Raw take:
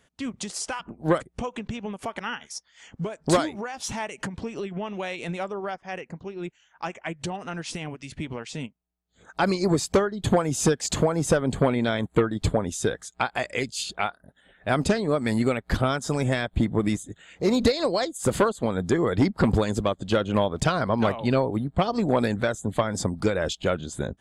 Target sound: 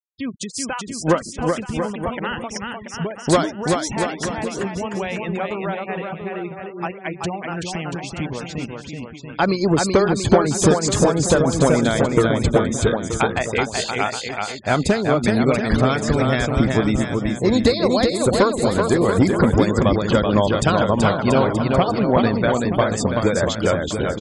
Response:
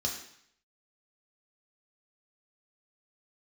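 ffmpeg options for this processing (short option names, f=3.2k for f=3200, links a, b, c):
-af "afftfilt=real='re*gte(hypot(re,im),0.0178)':imag='im*gte(hypot(re,im),0.0178)':win_size=1024:overlap=0.75,aecho=1:1:380|684|927.2|1122|1277:0.631|0.398|0.251|0.158|0.1,volume=4.5dB"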